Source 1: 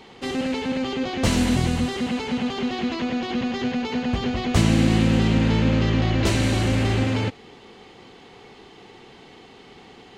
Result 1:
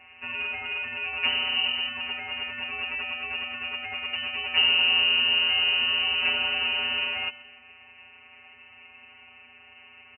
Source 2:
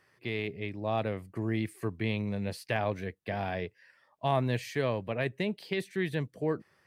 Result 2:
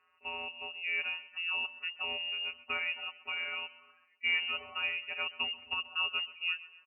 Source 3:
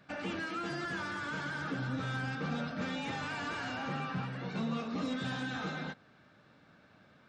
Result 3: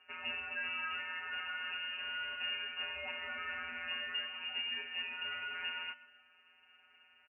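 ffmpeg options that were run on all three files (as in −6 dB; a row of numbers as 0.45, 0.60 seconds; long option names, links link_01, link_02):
-af "afftfilt=real='hypot(re,im)*cos(PI*b)':imag='0':win_size=1024:overlap=0.75,aecho=1:1:131|262|393|524:0.133|0.0613|0.0282|0.013,lowpass=frequency=2600:width_type=q:width=0.5098,lowpass=frequency=2600:width_type=q:width=0.6013,lowpass=frequency=2600:width_type=q:width=0.9,lowpass=frequency=2600:width_type=q:width=2.563,afreqshift=-3000"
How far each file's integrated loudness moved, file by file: −1.5, −0.5, −1.5 LU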